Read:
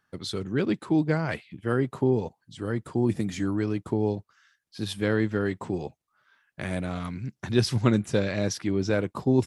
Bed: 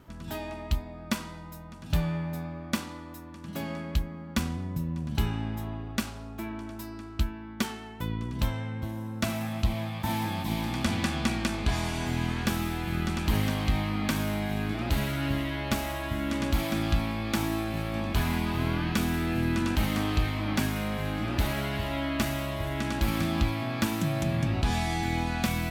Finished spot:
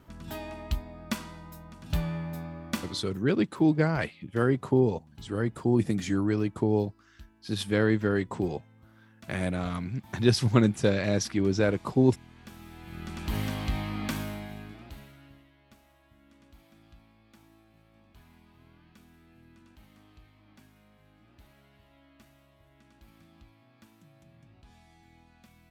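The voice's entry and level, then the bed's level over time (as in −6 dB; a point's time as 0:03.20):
2.70 s, +0.5 dB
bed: 0:02.88 −2.5 dB
0:03.38 −23 dB
0:12.31 −23 dB
0:13.40 −4 dB
0:14.16 −4 dB
0:15.54 −30 dB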